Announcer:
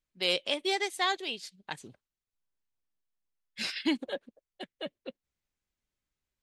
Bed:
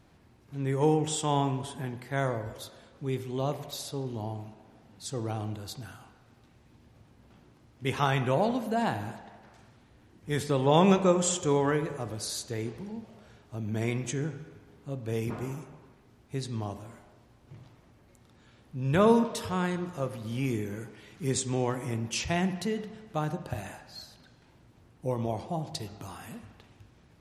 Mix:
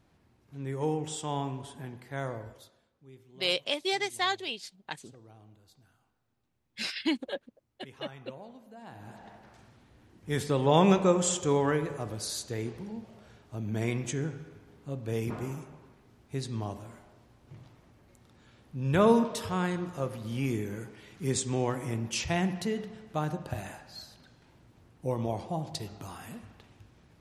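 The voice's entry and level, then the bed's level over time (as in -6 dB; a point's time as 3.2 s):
3.20 s, 0.0 dB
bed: 2.43 s -6 dB
2.97 s -21 dB
8.82 s -21 dB
9.26 s -0.5 dB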